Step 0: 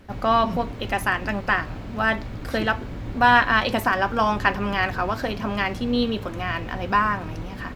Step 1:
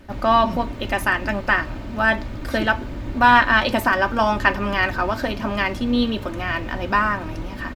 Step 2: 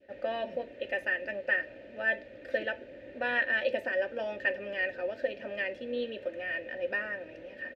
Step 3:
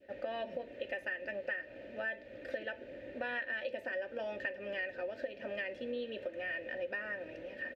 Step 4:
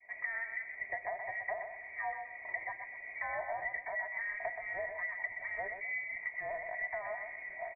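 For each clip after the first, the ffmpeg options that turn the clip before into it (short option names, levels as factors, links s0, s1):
-af "aecho=1:1:3.3:0.42,volume=1.26"
-filter_complex "[0:a]adynamicequalizer=threshold=0.0316:dfrequency=1400:dqfactor=0.87:tfrequency=1400:tqfactor=0.87:attack=5:release=100:ratio=0.375:range=2:mode=cutabove:tftype=bell,asplit=3[s0][s1][s2];[s0]bandpass=f=530:t=q:w=8,volume=1[s3];[s1]bandpass=f=1840:t=q:w=8,volume=0.501[s4];[s2]bandpass=f=2480:t=q:w=8,volume=0.355[s5];[s3][s4][s5]amix=inputs=3:normalize=0"
-af "acompressor=threshold=0.0158:ratio=5"
-filter_complex "[0:a]asplit=2[s0][s1];[s1]aecho=0:1:125|250|375|500:0.447|0.13|0.0376|0.0109[s2];[s0][s2]amix=inputs=2:normalize=0,lowpass=f=2100:t=q:w=0.5098,lowpass=f=2100:t=q:w=0.6013,lowpass=f=2100:t=q:w=0.9,lowpass=f=2100:t=q:w=2.563,afreqshift=-2500"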